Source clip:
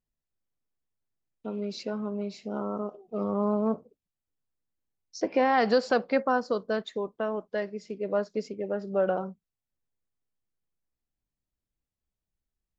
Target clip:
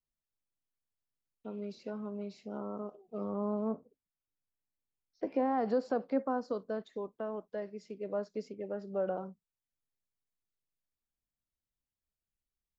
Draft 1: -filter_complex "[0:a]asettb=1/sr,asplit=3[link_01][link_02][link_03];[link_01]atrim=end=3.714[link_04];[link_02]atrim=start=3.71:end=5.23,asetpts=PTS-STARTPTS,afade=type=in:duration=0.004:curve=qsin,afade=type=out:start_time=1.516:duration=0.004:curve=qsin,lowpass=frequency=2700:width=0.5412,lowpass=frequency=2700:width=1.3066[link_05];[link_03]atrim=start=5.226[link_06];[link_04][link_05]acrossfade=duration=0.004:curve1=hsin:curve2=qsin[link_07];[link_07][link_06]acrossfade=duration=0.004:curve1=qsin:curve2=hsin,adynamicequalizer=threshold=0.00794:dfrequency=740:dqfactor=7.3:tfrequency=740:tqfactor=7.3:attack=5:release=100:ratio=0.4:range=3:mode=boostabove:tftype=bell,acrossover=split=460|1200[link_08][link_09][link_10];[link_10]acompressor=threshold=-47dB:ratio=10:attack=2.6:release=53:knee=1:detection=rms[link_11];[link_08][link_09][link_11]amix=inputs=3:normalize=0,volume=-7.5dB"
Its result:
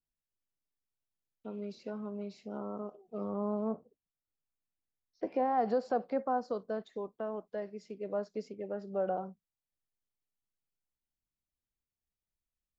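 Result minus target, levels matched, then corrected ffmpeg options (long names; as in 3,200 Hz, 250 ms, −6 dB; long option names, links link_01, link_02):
1,000 Hz band +3.0 dB
-filter_complex "[0:a]asettb=1/sr,asplit=3[link_01][link_02][link_03];[link_01]atrim=end=3.714[link_04];[link_02]atrim=start=3.71:end=5.23,asetpts=PTS-STARTPTS,afade=type=in:duration=0.004:curve=qsin,afade=type=out:start_time=1.516:duration=0.004:curve=qsin,lowpass=frequency=2700:width=0.5412,lowpass=frequency=2700:width=1.3066[link_05];[link_03]atrim=start=5.226[link_06];[link_04][link_05]acrossfade=duration=0.004:curve1=hsin:curve2=qsin[link_07];[link_07][link_06]acrossfade=duration=0.004:curve1=qsin:curve2=hsin,adynamicequalizer=threshold=0.00794:dfrequency=270:dqfactor=7.3:tfrequency=270:tqfactor=7.3:attack=5:release=100:ratio=0.4:range=3:mode=boostabove:tftype=bell,acrossover=split=460|1200[link_08][link_09][link_10];[link_10]acompressor=threshold=-47dB:ratio=10:attack=2.6:release=53:knee=1:detection=rms[link_11];[link_08][link_09][link_11]amix=inputs=3:normalize=0,volume=-7.5dB"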